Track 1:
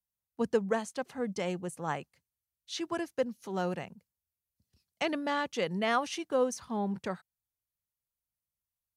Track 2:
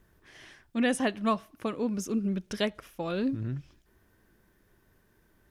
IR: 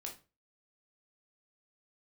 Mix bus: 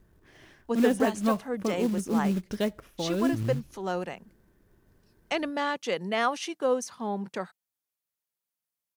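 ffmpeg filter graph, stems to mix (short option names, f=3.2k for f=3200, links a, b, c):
-filter_complex "[0:a]highpass=210,adelay=300,volume=2.5dB[a];[1:a]tiltshelf=f=970:g=5,acrusher=bits=5:mode=log:mix=0:aa=0.000001,volume=-1.5dB[b];[a][b]amix=inputs=2:normalize=0"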